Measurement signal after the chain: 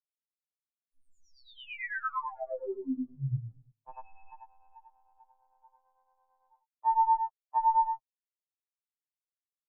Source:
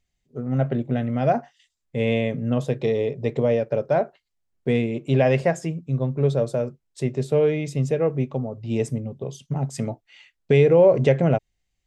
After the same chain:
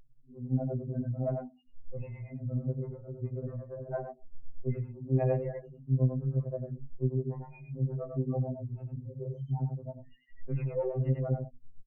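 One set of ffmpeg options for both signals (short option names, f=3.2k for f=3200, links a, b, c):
-filter_complex "[0:a]aeval=exprs='val(0)+0.5*0.0266*sgn(val(0))':c=same,afftfilt=real='re*gte(hypot(re,im),0.0891)':imag='im*gte(hypot(re,im),0.0891)':win_size=1024:overlap=0.75,bandreject=f=50:t=h:w=6,bandreject=f=100:t=h:w=6,bandreject=f=150:t=h:w=6,bandreject=f=200:t=h:w=6,bandreject=f=250:t=h:w=6,aeval=exprs='0.531*(cos(1*acos(clip(val(0)/0.531,-1,1)))-cos(1*PI/2))+0.0299*(cos(2*acos(clip(val(0)/0.531,-1,1)))-cos(2*PI/2))+0.00473*(cos(4*acos(clip(val(0)/0.531,-1,1)))-cos(4*PI/2))+0.00335*(cos(6*acos(clip(val(0)/0.531,-1,1)))-cos(6*PI/2))+0.00596*(cos(7*acos(clip(val(0)/0.531,-1,1)))-cos(7*PI/2))':c=same,acompressor=threshold=-36dB:ratio=2,lowpass=f=2k:w=0.5412,lowpass=f=2k:w=1.3066,asplit=2[a][b];[b]aecho=0:1:94:0.531[c];[a][c]amix=inputs=2:normalize=0,dynaudnorm=f=150:g=7:m=6.5dB,acrossover=split=410[d][e];[d]aeval=exprs='val(0)*(1-1/2+1/2*cos(2*PI*8.9*n/s))':c=same[f];[e]aeval=exprs='val(0)*(1-1/2-1/2*cos(2*PI*8.9*n/s))':c=same[g];[f][g]amix=inputs=2:normalize=0,afftfilt=real='re*2.45*eq(mod(b,6),0)':imag='im*2.45*eq(mod(b,6),0)':win_size=2048:overlap=0.75,volume=-4dB"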